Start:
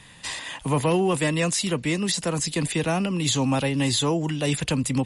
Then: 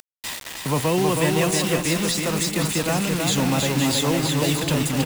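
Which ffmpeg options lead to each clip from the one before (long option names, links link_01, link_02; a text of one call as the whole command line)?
ffmpeg -i in.wav -af "acompressor=mode=upward:threshold=-37dB:ratio=2.5,acrusher=bits=4:mix=0:aa=0.000001,aecho=1:1:320|512|627.2|696.3|737.8:0.631|0.398|0.251|0.158|0.1" out.wav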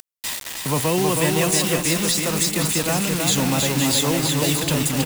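ffmpeg -i in.wav -af "highshelf=frequency=5000:gain=6.5" out.wav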